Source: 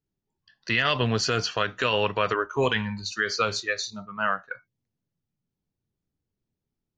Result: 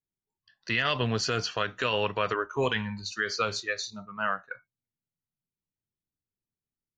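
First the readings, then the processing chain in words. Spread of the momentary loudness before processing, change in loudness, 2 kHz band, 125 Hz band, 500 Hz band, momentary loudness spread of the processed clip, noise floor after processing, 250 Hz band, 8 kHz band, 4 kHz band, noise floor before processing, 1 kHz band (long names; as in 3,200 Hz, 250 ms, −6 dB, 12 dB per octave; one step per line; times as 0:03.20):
9 LU, −3.5 dB, −3.5 dB, −3.5 dB, −3.5 dB, 9 LU, below −85 dBFS, −3.5 dB, −3.5 dB, −3.5 dB, below −85 dBFS, −3.5 dB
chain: noise reduction from a noise print of the clip's start 9 dB
level −3.5 dB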